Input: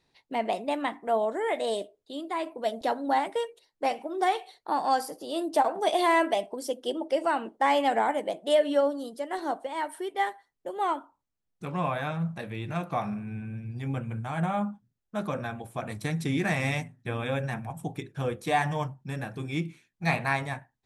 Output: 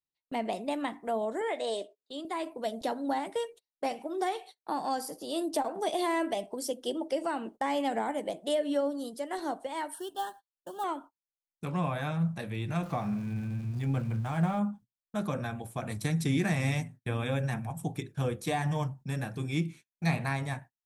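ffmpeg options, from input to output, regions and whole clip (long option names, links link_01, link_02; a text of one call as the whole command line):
ffmpeg -i in.wav -filter_complex "[0:a]asettb=1/sr,asplit=3[link_01][link_02][link_03];[link_01]atrim=end=1.414[link_04];[link_02]atrim=start=1.41:end=2.25,asetpts=PTS-STARTPTS,afade=type=in:duration=0.004:curve=qsin,afade=type=out:start_time=0.836:duration=0.004:curve=qsin,acompressor=mode=upward:threshold=-45dB:ratio=2.5:attack=3.2:release=140:knee=2.83:detection=peak,highpass=310,lowpass=7300[link_05];[link_03]atrim=start=2.246[link_06];[link_04][link_05]acrossfade=duration=0.004:curve1=hsin:curve2=qsin[link_07];[link_07][link_06]acrossfade=duration=0.004:curve1=qsin:curve2=hsin,asettb=1/sr,asplit=3[link_08][link_09][link_10];[link_08]atrim=end=9.944[link_11];[link_09]atrim=start=9.94:end=10.84,asetpts=PTS-STARTPTS,afade=type=in:duration=0.004:curve=qsin,afade=type=out:start_time=0.896:duration=0.004:curve=qsin,equalizer=frequency=480:width=2.8:gain=-12,acrusher=bits=6:mode=log:mix=0:aa=0.000001,asuperstop=centerf=2200:order=12:qfactor=2.3[link_12];[link_10]atrim=start=10.836[link_13];[link_11][link_12]acrossfade=duration=0.004:curve1=hsin:curve2=qsin[link_14];[link_14][link_13]acrossfade=duration=0.004:curve1=qsin:curve2=hsin,asettb=1/sr,asplit=3[link_15][link_16][link_17];[link_15]atrim=end=12.824[link_18];[link_16]atrim=start=12.82:end=14.59,asetpts=PTS-STARTPTS,afade=type=in:duration=0.004:curve=qsin,afade=type=out:start_time=1.766:duration=0.004:curve=qsin,aeval=exprs='val(0)+0.5*0.00596*sgn(val(0))':channel_layout=same,highshelf=frequency=4400:gain=-6[link_19];[link_17]atrim=start=14.586[link_20];[link_18][link_19]acrossfade=duration=0.004:curve1=hsin:curve2=qsin[link_21];[link_21][link_20]acrossfade=duration=0.004:curve1=qsin:curve2=hsin,bass=frequency=250:gain=4,treble=frequency=4000:gain=6,acrossover=split=430[link_22][link_23];[link_23]acompressor=threshold=-31dB:ratio=2.5[link_24];[link_22][link_24]amix=inputs=2:normalize=0,agate=range=-30dB:threshold=-45dB:ratio=16:detection=peak,volume=-2dB" out.wav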